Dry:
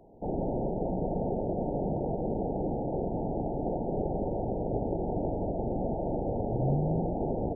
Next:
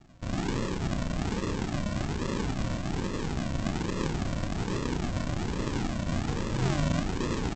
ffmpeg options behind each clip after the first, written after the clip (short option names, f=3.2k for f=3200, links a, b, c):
-filter_complex "[0:a]aresample=16000,acrusher=samples=30:mix=1:aa=0.000001:lfo=1:lforange=18:lforate=1.2,aresample=44100,asplit=2[a][b];[b]adelay=32,volume=-7dB[c];[a][c]amix=inputs=2:normalize=0"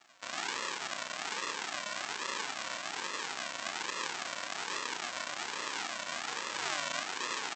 -filter_complex "[0:a]asplit=2[a][b];[b]alimiter=level_in=2dB:limit=-24dB:level=0:latency=1,volume=-2dB,volume=-1dB[c];[a][c]amix=inputs=2:normalize=0,highpass=1.1k"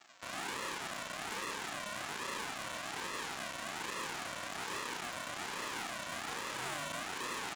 -af "volume=34.5dB,asoftclip=hard,volume=-34.5dB,volume=1.5dB"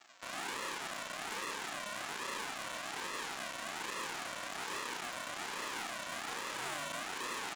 -af "equalizer=f=88:w=0.62:g=-6.5"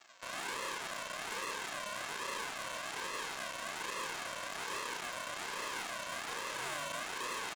-af "aecho=1:1:1.9:0.32"